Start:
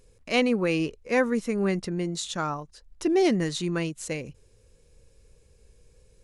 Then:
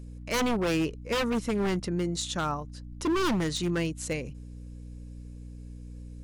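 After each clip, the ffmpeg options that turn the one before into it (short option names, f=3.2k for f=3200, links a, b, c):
-af "aeval=exprs='0.0841*(abs(mod(val(0)/0.0841+3,4)-2)-1)':c=same,aeval=exprs='val(0)+0.00891*(sin(2*PI*60*n/s)+sin(2*PI*2*60*n/s)/2+sin(2*PI*3*60*n/s)/3+sin(2*PI*4*60*n/s)/4+sin(2*PI*5*60*n/s)/5)':c=same"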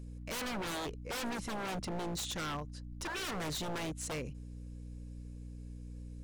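-af "aeval=exprs='0.0355*(abs(mod(val(0)/0.0355+3,4)-2)-1)':c=same,volume=-3.5dB"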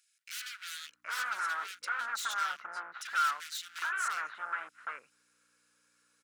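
-filter_complex "[0:a]highpass=f=1.4k:t=q:w=7.1,acrossover=split=2200[a][b];[a]adelay=770[c];[c][b]amix=inputs=2:normalize=0"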